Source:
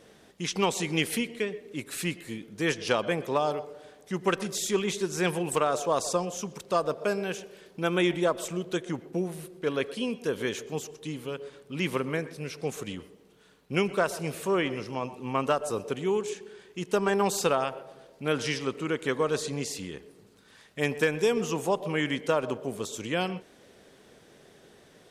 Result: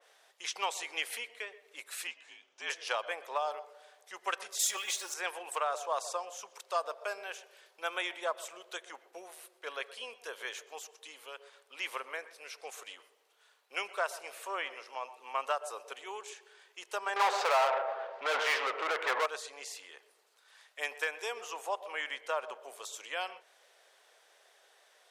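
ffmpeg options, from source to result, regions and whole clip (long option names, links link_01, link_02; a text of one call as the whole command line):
ffmpeg -i in.wav -filter_complex "[0:a]asettb=1/sr,asplit=3[link_01][link_02][link_03];[link_01]atrim=end=2.074[link_04];[link_02]atrim=start=2.07:end=2.7,asetpts=PTS-STARTPTS,afade=type=in:duration=0.004:curve=qsin,afade=type=out:start_time=0.626:duration=0.004:curve=qsin,highpass=200,equalizer=frequency=460:width_type=q:width=4:gain=-3,equalizer=frequency=1400:width_type=q:width=4:gain=-5,equalizer=frequency=2000:width_type=q:width=4:gain=-7,equalizer=frequency=2800:width_type=q:width=4:gain=3,equalizer=frequency=4300:width_type=q:width=4:gain=-8,lowpass=frequency=6500:width=0.5412,lowpass=frequency=6500:width=1.3066,afreqshift=-62[link_05];[link_03]atrim=start=2.696[link_06];[link_04][link_05]acrossfade=duration=0.004:curve1=hsin:curve2=qsin[link_07];[link_07][link_06]acrossfade=duration=0.004:curve1=qsin:curve2=hsin,asettb=1/sr,asplit=3[link_08][link_09][link_10];[link_08]atrim=end=4.594[link_11];[link_09]atrim=start=4.59:end=5.14,asetpts=PTS-STARTPTS,afade=type=in:duration=0.004:curve=qsin,afade=type=out:start_time=0.546:duration=0.004:curve=qsin,aeval=exprs='val(0)+0.5*0.00794*sgn(val(0))':channel_layout=same,bass=frequency=250:gain=-3,treble=frequency=4000:gain=8,aecho=1:1:3.6:0.71,atrim=end_sample=24255[link_12];[link_10]atrim=start=5.136[link_13];[link_11][link_12]acrossfade=duration=0.004:curve1=hsin:curve2=qsin[link_14];[link_14][link_13]acrossfade=duration=0.004:curve1=qsin:curve2=hsin,asettb=1/sr,asplit=3[link_15][link_16][link_17];[link_15]atrim=end=17.164[link_18];[link_16]atrim=start=17.16:end=19.26,asetpts=PTS-STARTPTS,afade=type=in:duration=0.004:curve=qsin,afade=type=out:start_time=2.096:duration=0.004:curve=qsin,adynamicsmooth=sensitivity=0.5:basefreq=1600,asplit=2[link_19][link_20];[link_20]highpass=frequency=720:poles=1,volume=32dB,asoftclip=type=tanh:threshold=-13.5dB[link_21];[link_19][link_21]amix=inputs=2:normalize=0,lowpass=frequency=6600:poles=1,volume=-6dB[link_22];[link_17]atrim=start=19.256[link_23];[link_18][link_22]acrossfade=duration=0.004:curve1=hsin:curve2=qsin[link_24];[link_24][link_23]acrossfade=duration=0.004:curve1=qsin:curve2=hsin,highpass=frequency=640:width=0.5412,highpass=frequency=640:width=1.3066,adynamicequalizer=threshold=0.00501:dfrequency=3000:dqfactor=0.7:tfrequency=3000:tqfactor=0.7:attack=5:release=100:ratio=0.375:range=2.5:mode=cutabove:tftype=highshelf,volume=-4dB" out.wav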